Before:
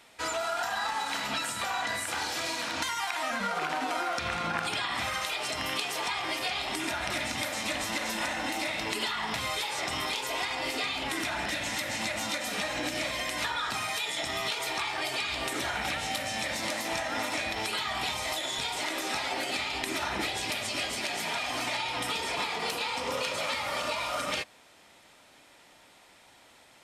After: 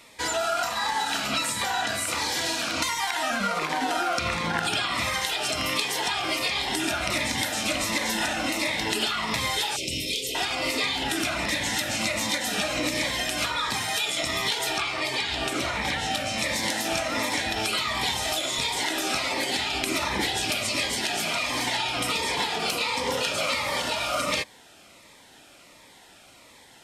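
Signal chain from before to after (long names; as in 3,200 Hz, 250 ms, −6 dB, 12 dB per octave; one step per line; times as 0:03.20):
0:09.76–0:10.35: elliptic band-stop filter 510–2,500 Hz, stop band 40 dB
0:14.78–0:16.38: high-shelf EQ 8,900 Hz −10.5 dB
phaser whose notches keep moving one way falling 1.4 Hz
level +7 dB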